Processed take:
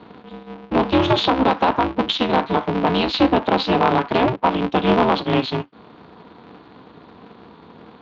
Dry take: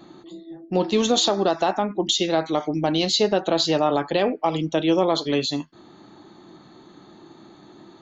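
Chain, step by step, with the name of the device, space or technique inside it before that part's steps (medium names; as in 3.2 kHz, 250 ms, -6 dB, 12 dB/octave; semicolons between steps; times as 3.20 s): ring modulator pedal into a guitar cabinet (polarity switched at an audio rate 130 Hz; cabinet simulation 99–3500 Hz, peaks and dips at 280 Hz +5 dB, 510 Hz -4 dB, 970 Hz +4 dB, 1.9 kHz -3 dB); trim +3.5 dB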